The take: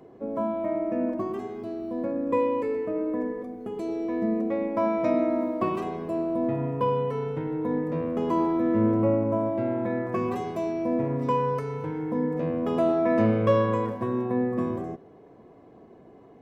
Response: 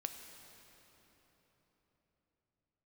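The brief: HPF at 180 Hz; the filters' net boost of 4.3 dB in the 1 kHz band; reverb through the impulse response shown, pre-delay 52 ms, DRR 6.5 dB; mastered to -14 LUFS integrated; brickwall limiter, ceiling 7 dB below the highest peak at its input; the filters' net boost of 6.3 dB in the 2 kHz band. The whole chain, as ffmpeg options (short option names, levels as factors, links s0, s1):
-filter_complex "[0:a]highpass=180,equalizer=f=1000:t=o:g=3.5,equalizer=f=2000:t=o:g=6.5,alimiter=limit=0.158:level=0:latency=1,asplit=2[s0][s1];[1:a]atrim=start_sample=2205,adelay=52[s2];[s1][s2]afir=irnorm=-1:irlink=0,volume=0.562[s3];[s0][s3]amix=inputs=2:normalize=0,volume=4.22"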